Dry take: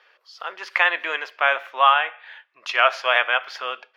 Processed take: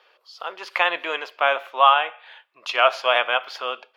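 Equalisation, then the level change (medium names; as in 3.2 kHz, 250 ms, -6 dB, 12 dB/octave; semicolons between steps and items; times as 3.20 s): peaking EQ 5.8 kHz -4.5 dB 0.49 oct; dynamic bell 190 Hz, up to +6 dB, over -48 dBFS, Q 2.1; peaking EQ 1.8 kHz -9.5 dB 0.83 oct; +3.5 dB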